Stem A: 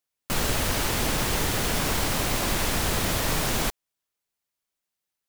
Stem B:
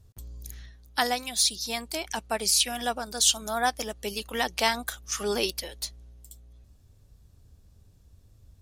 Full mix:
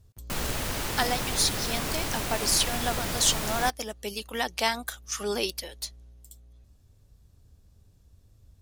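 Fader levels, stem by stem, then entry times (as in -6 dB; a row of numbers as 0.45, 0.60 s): -5.5, -1.5 dB; 0.00, 0.00 s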